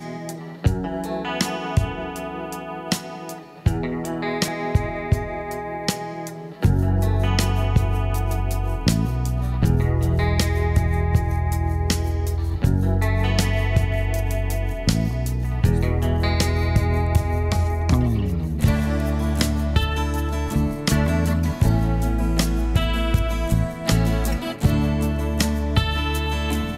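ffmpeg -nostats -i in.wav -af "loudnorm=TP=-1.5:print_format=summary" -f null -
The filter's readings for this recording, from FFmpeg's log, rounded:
Input Integrated:    -22.4 LUFS
Input True Peak:      -6.6 dBTP
Input LRA:             4.2 LU
Input Threshold:     -32.5 LUFS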